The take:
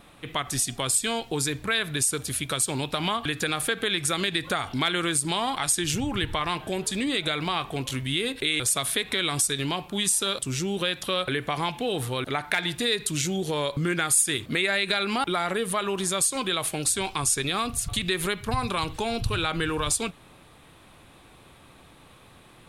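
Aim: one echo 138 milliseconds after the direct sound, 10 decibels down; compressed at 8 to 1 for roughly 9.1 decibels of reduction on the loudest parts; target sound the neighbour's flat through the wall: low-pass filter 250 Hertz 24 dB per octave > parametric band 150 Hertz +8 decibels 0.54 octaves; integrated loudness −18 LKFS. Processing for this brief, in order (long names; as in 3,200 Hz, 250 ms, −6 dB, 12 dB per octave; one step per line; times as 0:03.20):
downward compressor 8 to 1, threshold −28 dBFS
low-pass filter 250 Hz 24 dB per octave
parametric band 150 Hz +8 dB 0.54 octaves
single-tap delay 138 ms −10 dB
level +18 dB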